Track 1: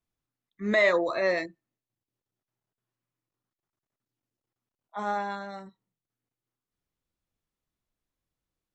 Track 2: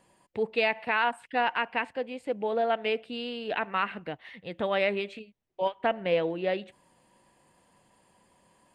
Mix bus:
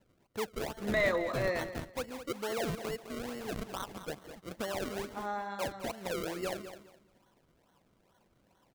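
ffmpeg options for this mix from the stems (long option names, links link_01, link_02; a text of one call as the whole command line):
ffmpeg -i stem1.wav -i stem2.wav -filter_complex "[0:a]adelay=200,volume=-7dB,asplit=2[link_01][link_02];[link_02]volume=-12.5dB[link_03];[1:a]lowpass=frequency=3300:width=0.5412,lowpass=frequency=3300:width=1.3066,alimiter=limit=-22.5dB:level=0:latency=1:release=190,acrusher=samples=35:mix=1:aa=0.000001:lfo=1:lforange=35:lforate=2.3,volume=-4.5dB,asplit=2[link_04][link_05];[link_05]volume=-11dB[link_06];[link_03][link_06]amix=inputs=2:normalize=0,aecho=0:1:208|416|624|832:1|0.23|0.0529|0.0122[link_07];[link_01][link_04][link_07]amix=inputs=3:normalize=0" out.wav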